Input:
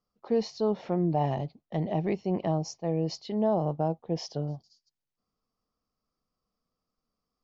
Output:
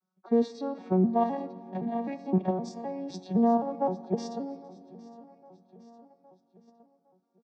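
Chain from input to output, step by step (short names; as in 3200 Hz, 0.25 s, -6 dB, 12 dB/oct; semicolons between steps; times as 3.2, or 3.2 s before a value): arpeggiated vocoder major triad, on F#3, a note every 0.258 s; low shelf 290 Hz -10.5 dB; feedback echo 0.811 s, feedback 52%, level -19 dB; in parallel at +1 dB: level quantiser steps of 16 dB; on the sum: notch 3000 Hz, Q 6; notch comb 510 Hz; on a send at -13.5 dB: reverb RT60 3.0 s, pre-delay 9 ms; on the sum: gain +3 dB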